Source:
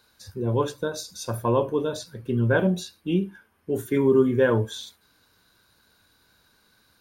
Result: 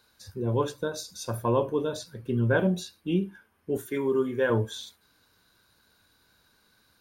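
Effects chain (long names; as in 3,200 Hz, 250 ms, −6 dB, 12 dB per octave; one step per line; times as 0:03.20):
0:03.77–0:04.50: low-shelf EQ 290 Hz −11.5 dB
level −2.5 dB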